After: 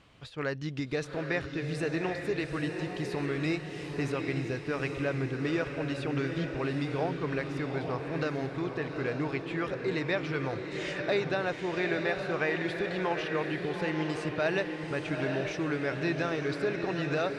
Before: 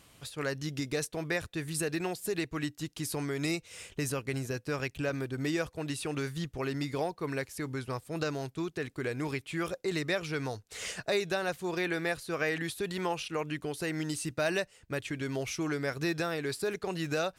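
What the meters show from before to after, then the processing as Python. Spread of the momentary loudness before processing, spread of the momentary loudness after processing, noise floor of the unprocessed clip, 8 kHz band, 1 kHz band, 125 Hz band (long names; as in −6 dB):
5 LU, 4 LU, −62 dBFS, −12.0 dB, +2.5 dB, +2.5 dB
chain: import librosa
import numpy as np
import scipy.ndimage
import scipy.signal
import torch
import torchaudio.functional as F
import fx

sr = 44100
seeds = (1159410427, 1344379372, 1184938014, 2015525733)

p1 = scipy.signal.sosfilt(scipy.signal.butter(2, 3400.0, 'lowpass', fs=sr, output='sos'), x)
p2 = p1 + fx.echo_diffused(p1, sr, ms=835, feedback_pct=55, wet_db=-5.0, dry=0)
y = p2 * librosa.db_to_amplitude(1.0)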